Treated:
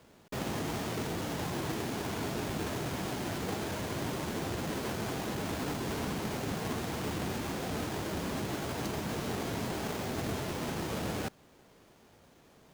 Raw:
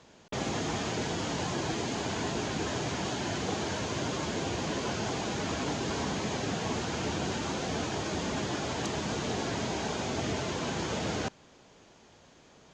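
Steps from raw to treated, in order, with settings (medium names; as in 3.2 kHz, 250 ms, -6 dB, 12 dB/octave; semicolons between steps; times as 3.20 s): square wave that keeps the level; trim -7.5 dB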